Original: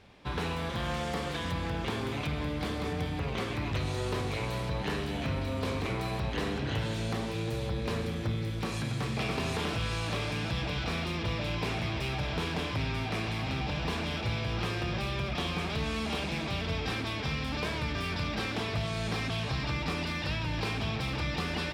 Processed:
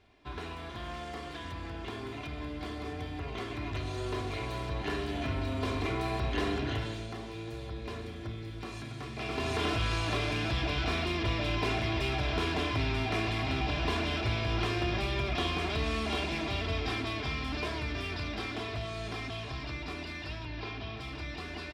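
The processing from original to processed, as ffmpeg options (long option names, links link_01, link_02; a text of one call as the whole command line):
ffmpeg -i in.wav -filter_complex "[0:a]asettb=1/sr,asplit=3[link_01][link_02][link_03];[link_01]atrim=end=20.454[link_04];[link_02]atrim=start=20.45:end=20.97,asetpts=PTS-STARTPTS,afade=type=in:duration=0.004:curve=qsin,afade=type=out:start_time=0.516:duration=0.004:curve=qsin,lowpass=frequency=5400:width=0.5412,lowpass=frequency=5400:width=1.3066[link_05];[link_03]atrim=start=20.966[link_06];[link_04][link_05]acrossfade=duration=0.004:curve1=hsin:curve2=qsin[link_07];[link_07][link_06]acrossfade=duration=0.004:curve1=qsin:curve2=hsin,asplit=3[link_08][link_09][link_10];[link_08]atrim=end=7.08,asetpts=PTS-STARTPTS,afade=type=out:start_time=6.58:duration=0.5:silence=0.375837[link_11];[link_09]atrim=start=7.08:end=9.15,asetpts=PTS-STARTPTS,volume=-8.5dB[link_12];[link_10]atrim=start=9.15,asetpts=PTS-STARTPTS,afade=type=in:duration=0.5:silence=0.375837[link_13];[link_11][link_12][link_13]concat=n=3:v=0:a=1,highshelf=frequency=9300:gain=-9,aecho=1:1:2.9:0.6,dynaudnorm=framelen=560:gausssize=17:maxgain=9dB,volume=-8dB" out.wav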